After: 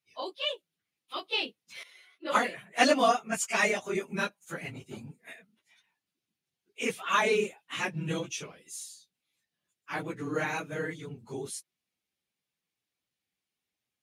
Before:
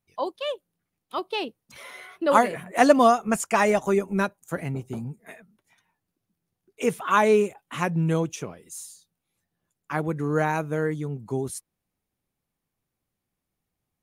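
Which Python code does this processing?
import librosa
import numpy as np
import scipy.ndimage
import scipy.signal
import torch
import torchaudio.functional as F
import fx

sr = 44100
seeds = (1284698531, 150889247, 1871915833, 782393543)

y = fx.phase_scramble(x, sr, seeds[0], window_ms=50)
y = fx.weighting(y, sr, curve='D')
y = fx.band_widen(y, sr, depth_pct=70, at=(1.83, 3.95))
y = y * librosa.db_to_amplitude(-8.0)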